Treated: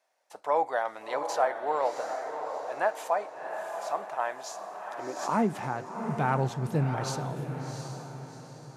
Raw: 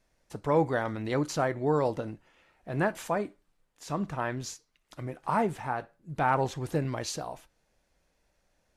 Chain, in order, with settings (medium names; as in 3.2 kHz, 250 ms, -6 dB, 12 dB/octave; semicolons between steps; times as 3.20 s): high-pass sweep 710 Hz -> 130 Hz, 4.54–5.82 s; echo that smears into a reverb 721 ms, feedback 42%, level -6.5 dB; 5.16–5.95 s: swell ahead of each attack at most 65 dB/s; trim -2.5 dB